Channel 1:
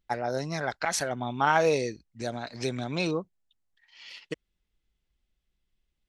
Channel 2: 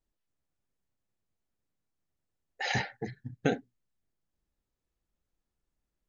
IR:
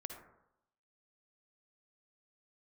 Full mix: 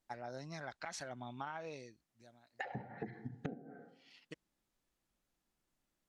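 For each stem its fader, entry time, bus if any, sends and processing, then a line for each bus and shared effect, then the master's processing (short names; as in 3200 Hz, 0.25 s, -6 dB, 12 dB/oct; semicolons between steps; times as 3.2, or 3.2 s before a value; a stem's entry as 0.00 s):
-13.5 dB, 0.00 s, no send, auto duck -20 dB, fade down 1.15 s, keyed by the second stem
+1.5 dB, 0.00 s, send -4.5 dB, HPF 160 Hz 12 dB/oct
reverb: on, RT60 0.80 s, pre-delay 47 ms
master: treble ducked by the level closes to 510 Hz, closed at -25.5 dBFS; bell 440 Hz -5.5 dB 0.44 oct; compressor 20:1, threshold -39 dBFS, peak gain reduction 18.5 dB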